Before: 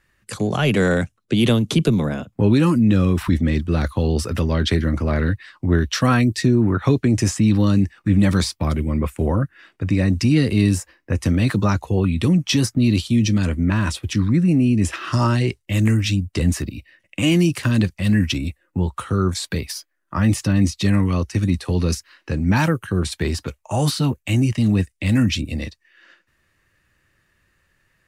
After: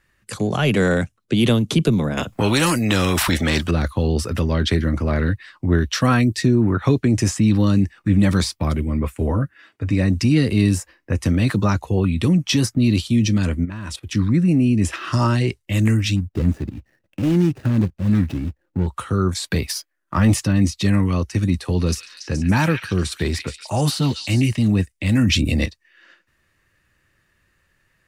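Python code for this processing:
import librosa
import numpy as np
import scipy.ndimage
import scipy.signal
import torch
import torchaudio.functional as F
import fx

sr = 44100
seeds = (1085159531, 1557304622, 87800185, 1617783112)

y = fx.spectral_comp(x, sr, ratio=2.0, at=(2.17, 3.71))
y = fx.notch_comb(y, sr, f0_hz=180.0, at=(8.81, 9.93))
y = fx.level_steps(y, sr, step_db=15, at=(13.64, 14.12), fade=0.02)
y = fx.median_filter(y, sr, points=41, at=(16.16, 18.87))
y = fx.leveller(y, sr, passes=1, at=(19.49, 20.4))
y = fx.echo_stepped(y, sr, ms=141, hz=2500.0, octaves=0.7, feedback_pct=70, wet_db=-2.0, at=(21.86, 24.56), fade=0.02)
y = fx.env_flatten(y, sr, amount_pct=70, at=(25.23, 25.66))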